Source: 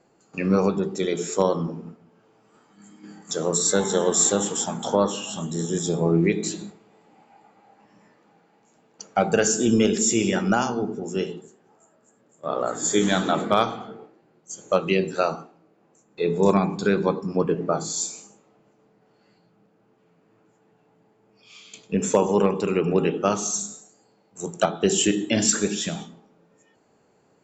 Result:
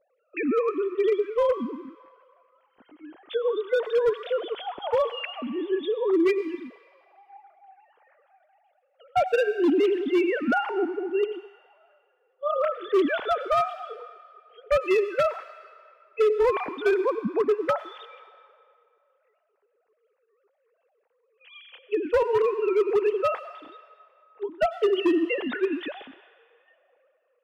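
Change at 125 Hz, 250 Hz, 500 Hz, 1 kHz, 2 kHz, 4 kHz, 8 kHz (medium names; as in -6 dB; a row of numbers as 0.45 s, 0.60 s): under -20 dB, -5.0 dB, +0.5 dB, -2.0 dB, -1.0 dB, -8.0 dB, under -30 dB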